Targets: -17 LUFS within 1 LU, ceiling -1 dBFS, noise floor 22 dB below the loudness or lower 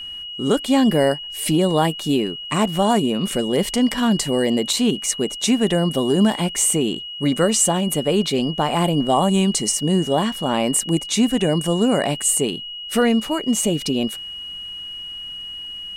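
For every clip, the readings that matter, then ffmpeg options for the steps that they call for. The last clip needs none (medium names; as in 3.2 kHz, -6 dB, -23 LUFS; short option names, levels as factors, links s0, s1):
steady tone 2.9 kHz; tone level -30 dBFS; loudness -19.5 LUFS; peak level -5.0 dBFS; loudness target -17.0 LUFS
-> -af "bandreject=f=2900:w=30"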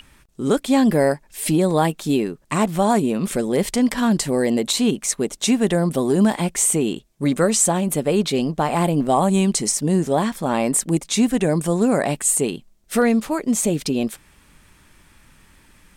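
steady tone not found; loudness -20.0 LUFS; peak level -5.5 dBFS; loudness target -17.0 LUFS
-> -af "volume=1.41"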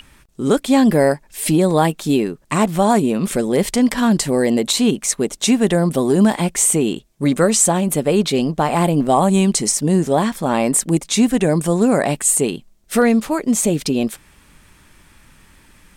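loudness -17.0 LUFS; peak level -2.5 dBFS; noise floor -52 dBFS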